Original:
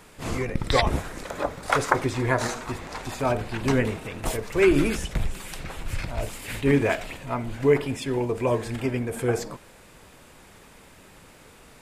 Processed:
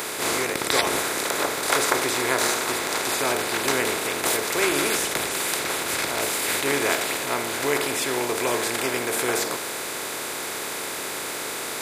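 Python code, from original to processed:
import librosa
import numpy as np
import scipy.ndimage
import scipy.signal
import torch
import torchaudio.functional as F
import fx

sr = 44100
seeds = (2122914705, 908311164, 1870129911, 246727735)

y = fx.bin_compress(x, sr, power=0.4)
y = scipy.signal.sosfilt(scipy.signal.butter(2, 74.0, 'highpass', fs=sr, output='sos'), y)
y = fx.riaa(y, sr, side='recording')
y = y * 10.0 ** (-5.5 / 20.0)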